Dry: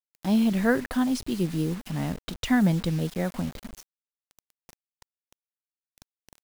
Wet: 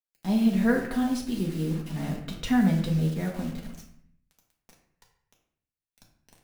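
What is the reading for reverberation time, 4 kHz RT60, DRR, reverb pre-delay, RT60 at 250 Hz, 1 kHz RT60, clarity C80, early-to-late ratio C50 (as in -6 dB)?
0.60 s, 0.50 s, -1.0 dB, 4 ms, 0.80 s, 0.60 s, 9.5 dB, 6.5 dB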